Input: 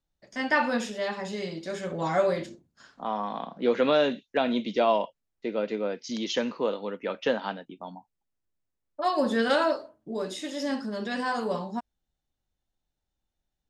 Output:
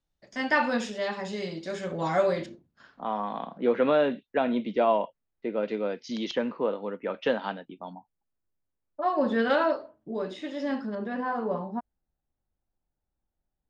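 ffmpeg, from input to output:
ffmpeg -i in.wav -af "asetnsamples=nb_out_samples=441:pad=0,asendcmd='2.46 lowpass f 3300;3.58 lowpass f 2200;5.63 lowpass f 4500;6.31 lowpass f 2000;7.14 lowpass f 3900;7.93 lowpass f 1700;9.21 lowpass f 2800;10.95 lowpass f 1400',lowpass=7500" out.wav

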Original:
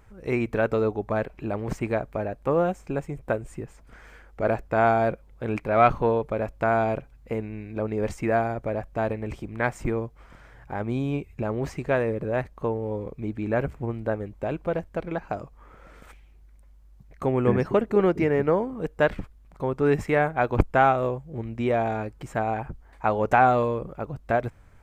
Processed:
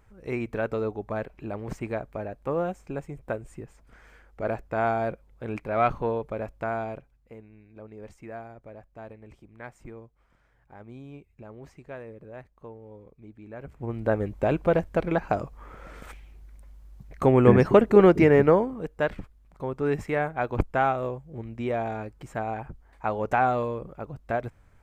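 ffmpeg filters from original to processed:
ffmpeg -i in.wav -af "volume=16.5dB,afade=type=out:start_time=6.42:duration=0.9:silence=0.266073,afade=type=in:start_time=13.6:duration=0.17:silence=0.354813,afade=type=in:start_time=13.77:duration=0.48:silence=0.237137,afade=type=out:start_time=18.39:duration=0.47:silence=0.334965" out.wav

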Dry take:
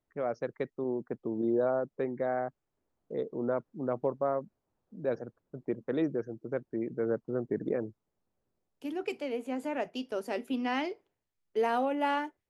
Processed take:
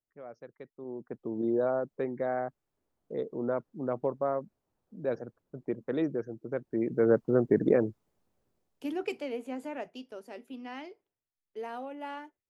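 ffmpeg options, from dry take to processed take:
ffmpeg -i in.wav -af "volume=8dB,afade=type=in:start_time=0.72:duration=0.7:silence=0.223872,afade=type=in:start_time=6.57:duration=0.61:silence=0.398107,afade=type=out:start_time=7.71:duration=1.57:silence=0.354813,afade=type=out:start_time=9.28:duration=0.93:silence=0.334965" out.wav

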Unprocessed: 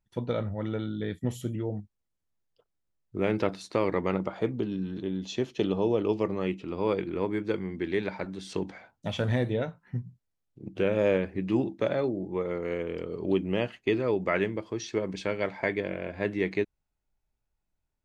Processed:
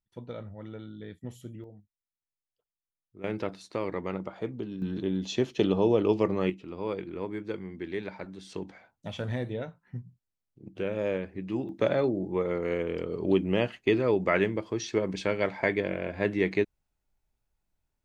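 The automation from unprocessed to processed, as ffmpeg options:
ffmpeg -i in.wav -af "asetnsamples=nb_out_samples=441:pad=0,asendcmd='1.64 volume volume -17dB;3.24 volume volume -5.5dB;4.82 volume volume 2.5dB;6.5 volume volume -5.5dB;11.69 volume volume 2dB',volume=-10dB" out.wav

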